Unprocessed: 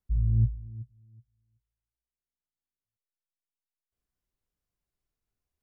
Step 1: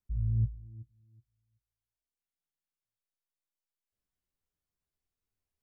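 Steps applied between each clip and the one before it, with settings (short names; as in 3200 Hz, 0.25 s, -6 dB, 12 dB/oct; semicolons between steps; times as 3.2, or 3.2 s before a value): flange 0.53 Hz, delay 9.6 ms, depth 3.1 ms, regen +41%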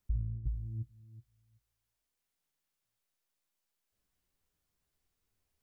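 negative-ratio compressor -34 dBFS, ratio -0.5; gain +2 dB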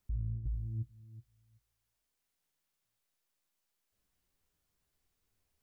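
limiter -31 dBFS, peak gain reduction 8 dB; gain +1.5 dB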